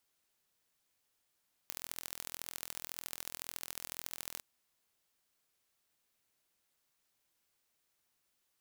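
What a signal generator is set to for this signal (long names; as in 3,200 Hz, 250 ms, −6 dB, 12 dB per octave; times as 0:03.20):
impulse train 41.9 per second, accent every 3, −12 dBFS 2.71 s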